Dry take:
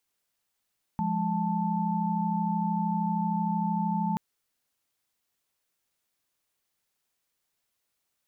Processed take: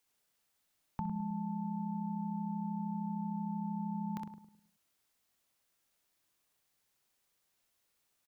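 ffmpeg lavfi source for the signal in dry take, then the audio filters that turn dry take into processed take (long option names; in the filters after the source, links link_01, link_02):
-f lavfi -i "aevalsrc='0.0335*(sin(2*PI*174.61*t)+sin(2*PI*207.65*t)+sin(2*PI*880*t))':duration=3.18:sample_rate=44100"
-filter_complex "[0:a]asplit=2[link_01][link_02];[link_02]aecho=0:1:26|63:0.168|0.501[link_03];[link_01][link_03]amix=inputs=2:normalize=0,acrossover=split=290|780[link_04][link_05][link_06];[link_04]acompressor=threshold=-39dB:ratio=4[link_07];[link_05]acompressor=threshold=-51dB:ratio=4[link_08];[link_06]acompressor=threshold=-46dB:ratio=4[link_09];[link_07][link_08][link_09]amix=inputs=3:normalize=0,asplit=2[link_10][link_11];[link_11]adelay=105,lowpass=frequency=890:poles=1,volume=-7dB,asplit=2[link_12][link_13];[link_13]adelay=105,lowpass=frequency=890:poles=1,volume=0.42,asplit=2[link_14][link_15];[link_15]adelay=105,lowpass=frequency=890:poles=1,volume=0.42,asplit=2[link_16][link_17];[link_17]adelay=105,lowpass=frequency=890:poles=1,volume=0.42,asplit=2[link_18][link_19];[link_19]adelay=105,lowpass=frequency=890:poles=1,volume=0.42[link_20];[link_12][link_14][link_16][link_18][link_20]amix=inputs=5:normalize=0[link_21];[link_10][link_21]amix=inputs=2:normalize=0"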